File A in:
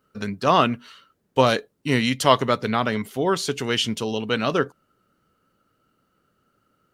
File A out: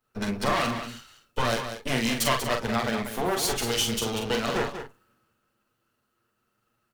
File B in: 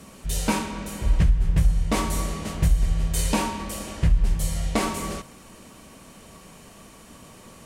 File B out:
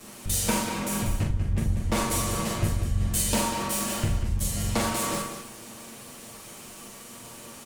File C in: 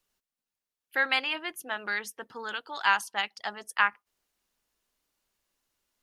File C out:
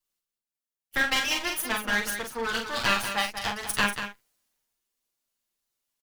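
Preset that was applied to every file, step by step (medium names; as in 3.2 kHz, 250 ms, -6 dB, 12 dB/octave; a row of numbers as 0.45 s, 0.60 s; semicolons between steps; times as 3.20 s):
comb filter that takes the minimum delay 8.6 ms; treble shelf 5.8 kHz +6 dB; compression 3:1, threshold -34 dBFS; doubling 44 ms -5.5 dB; on a send: delay 192 ms -7.5 dB; on the sum: three bands expanded up and down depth 40%; normalise loudness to -27 LUFS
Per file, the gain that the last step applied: +6.0 dB, +6.5 dB, +8.0 dB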